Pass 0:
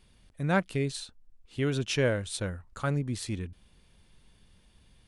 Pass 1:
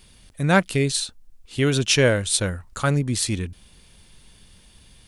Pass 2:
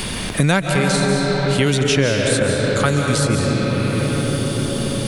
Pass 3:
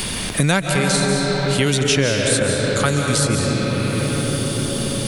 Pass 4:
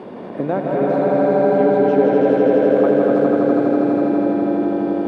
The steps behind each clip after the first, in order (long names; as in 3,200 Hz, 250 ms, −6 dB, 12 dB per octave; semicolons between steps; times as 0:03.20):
high-shelf EQ 3,400 Hz +9 dB; level +8 dB
convolution reverb RT60 4.6 s, pre-delay 100 ms, DRR 0.5 dB; multiband upward and downward compressor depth 100%; level +2 dB
high-shelf EQ 3,900 Hz +6 dB; level −1.5 dB
flat-topped band-pass 470 Hz, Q 0.89; echo that builds up and dies away 82 ms, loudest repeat 5, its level −4 dB; level +2 dB